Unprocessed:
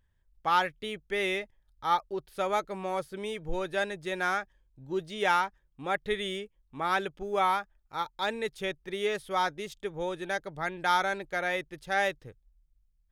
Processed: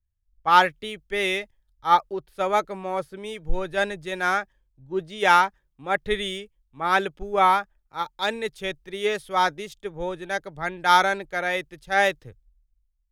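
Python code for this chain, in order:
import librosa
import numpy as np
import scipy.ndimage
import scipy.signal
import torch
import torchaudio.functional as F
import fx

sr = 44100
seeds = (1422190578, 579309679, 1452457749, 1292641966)

y = fx.band_widen(x, sr, depth_pct=70)
y = F.gain(torch.from_numpy(y), 5.5).numpy()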